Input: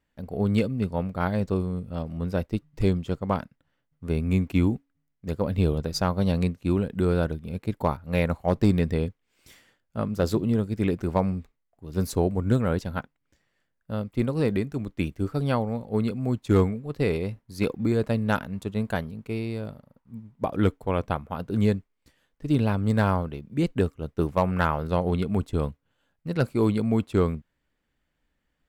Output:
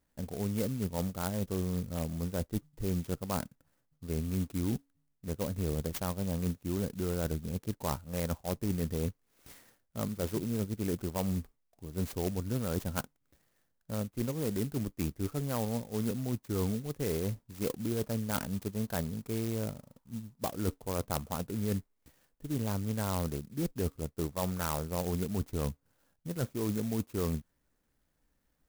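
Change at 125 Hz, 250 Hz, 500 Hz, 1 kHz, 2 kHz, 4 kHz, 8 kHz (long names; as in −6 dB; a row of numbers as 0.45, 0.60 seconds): −8.5, −8.5, −9.0, −10.0, −11.0, −4.5, +5.0 decibels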